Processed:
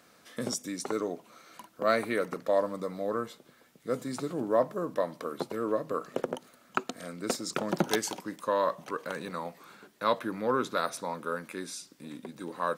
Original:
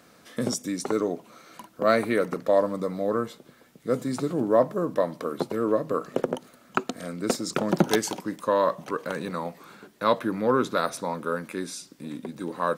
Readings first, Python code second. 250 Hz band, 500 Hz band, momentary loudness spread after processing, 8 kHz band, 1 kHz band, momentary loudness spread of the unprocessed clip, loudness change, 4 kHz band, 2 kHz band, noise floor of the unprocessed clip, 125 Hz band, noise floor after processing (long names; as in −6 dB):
−7.0 dB, −5.5 dB, 13 LU, −3.0 dB, −4.0 dB, 13 LU, −5.5 dB, −3.0 dB, −3.5 dB, −56 dBFS, −8.0 dB, −61 dBFS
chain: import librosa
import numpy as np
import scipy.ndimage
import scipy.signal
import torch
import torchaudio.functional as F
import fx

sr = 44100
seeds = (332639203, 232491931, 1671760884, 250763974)

y = fx.low_shelf(x, sr, hz=490.0, db=-5.5)
y = F.gain(torch.from_numpy(y), -3.0).numpy()